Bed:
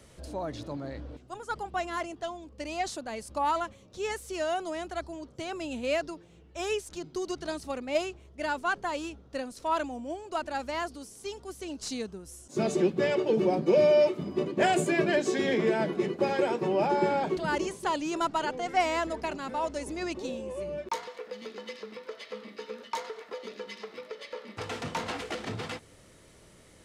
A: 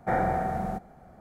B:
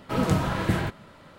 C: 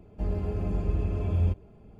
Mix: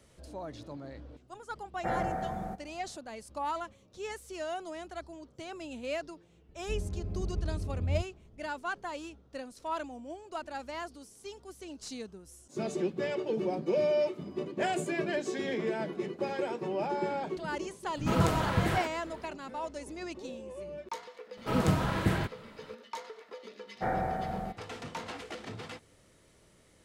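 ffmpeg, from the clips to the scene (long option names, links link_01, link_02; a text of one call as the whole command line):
ffmpeg -i bed.wav -i cue0.wav -i cue1.wav -i cue2.wav -filter_complex "[1:a]asplit=2[link_01][link_02];[2:a]asplit=2[link_03][link_04];[0:a]volume=-6.5dB[link_05];[3:a]lowshelf=frequency=430:gain=9.5[link_06];[link_03]acrossover=split=240[link_07][link_08];[link_08]adelay=90[link_09];[link_07][link_09]amix=inputs=2:normalize=0[link_10];[link_01]atrim=end=1.2,asetpts=PTS-STARTPTS,volume=-6.5dB,afade=type=in:duration=0.004:curve=hsin,afade=type=out:start_time=1.196:duration=0.004:curve=hsin,adelay=1770[link_11];[link_06]atrim=end=1.99,asetpts=PTS-STARTPTS,volume=-15.5dB,afade=type=in:duration=0.004:curve=hsin,afade=type=out:start_time=1.986:duration=0.004:curve=hsin,adelay=6490[link_12];[link_10]atrim=end=1.38,asetpts=PTS-STARTPTS,volume=-2.5dB,afade=type=in:duration=0.004:curve=hsin,afade=type=out:start_time=1.376:duration=0.004:curve=hsin,adelay=17880[link_13];[link_04]atrim=end=1.38,asetpts=PTS-STARTPTS,volume=-3.5dB,afade=type=in:duration=0.004:curve=hsin,afade=type=out:start_time=1.376:duration=0.004:curve=hsin,adelay=21370[link_14];[link_02]atrim=end=1.2,asetpts=PTS-STARTPTS,volume=-5.5dB,afade=type=in:duration=0.1,afade=type=out:start_time=1.1:duration=0.1,adelay=23740[link_15];[link_05][link_11][link_12][link_13][link_14][link_15]amix=inputs=6:normalize=0" out.wav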